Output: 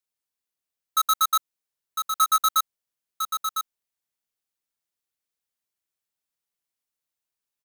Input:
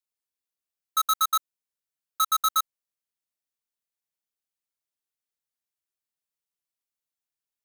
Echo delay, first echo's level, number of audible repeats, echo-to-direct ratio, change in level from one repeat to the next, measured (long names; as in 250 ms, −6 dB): 1,004 ms, −6.5 dB, 1, −6.5 dB, repeats not evenly spaced